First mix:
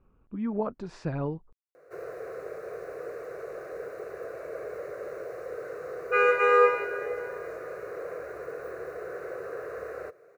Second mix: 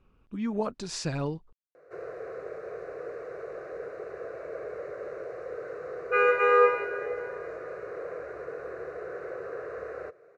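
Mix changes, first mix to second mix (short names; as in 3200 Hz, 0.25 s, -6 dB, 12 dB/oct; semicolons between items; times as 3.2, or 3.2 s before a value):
speech: remove LPF 1400 Hz 12 dB/oct; master: add air absorption 96 m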